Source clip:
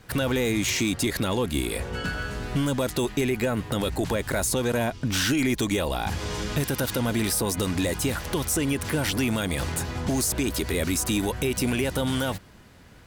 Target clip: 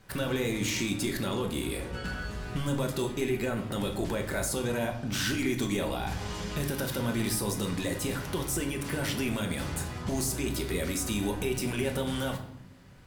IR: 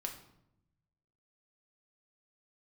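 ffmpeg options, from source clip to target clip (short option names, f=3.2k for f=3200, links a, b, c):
-filter_complex "[1:a]atrim=start_sample=2205[a];[0:a][a]afir=irnorm=-1:irlink=0,volume=-4.5dB"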